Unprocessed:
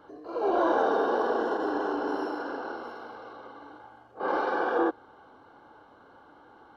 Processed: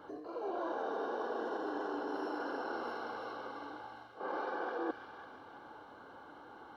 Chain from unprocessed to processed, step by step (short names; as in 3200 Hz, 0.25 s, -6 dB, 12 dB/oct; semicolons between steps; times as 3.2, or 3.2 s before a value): low shelf 78 Hz -5.5 dB; reverse; compressor 6:1, threshold -37 dBFS, peak gain reduction 15 dB; reverse; thin delay 0.333 s, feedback 48%, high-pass 2000 Hz, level -4 dB; gain +1 dB